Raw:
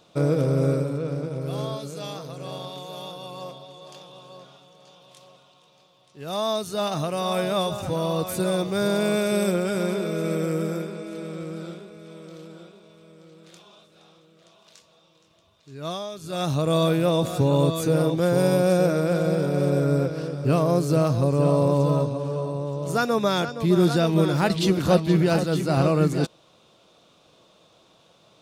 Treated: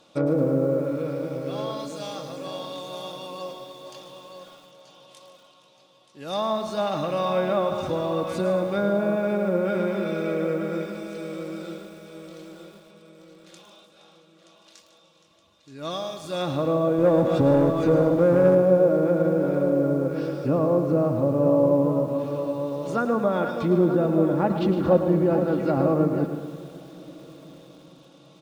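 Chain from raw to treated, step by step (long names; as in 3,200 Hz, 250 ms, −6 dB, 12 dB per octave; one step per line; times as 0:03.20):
treble cut that deepens with the level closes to 930 Hz, closed at −17.5 dBFS
low-shelf EQ 87 Hz −7.5 dB
comb filter 3.6 ms, depth 41%
0:16.98–0:18.55: leveller curve on the samples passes 1
repeating echo 150 ms, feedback 32%, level −13 dB
on a send at −16 dB: convolution reverb RT60 5.9 s, pre-delay 81 ms
on the sum: feedback echo at a low word length 109 ms, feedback 55%, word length 8 bits, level −10 dB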